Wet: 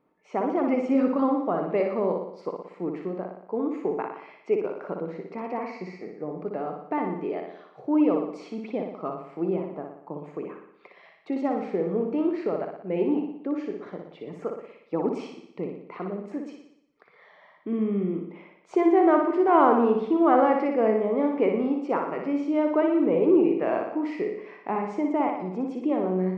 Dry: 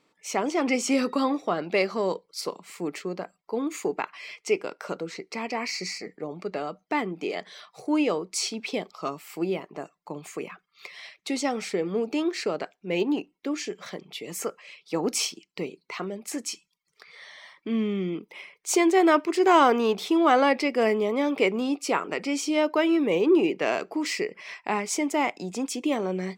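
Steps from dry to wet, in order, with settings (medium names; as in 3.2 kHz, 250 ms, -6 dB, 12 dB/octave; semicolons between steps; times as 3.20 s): low-pass 1.1 kHz 12 dB/octave; on a send: flutter echo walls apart 10.2 m, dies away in 0.73 s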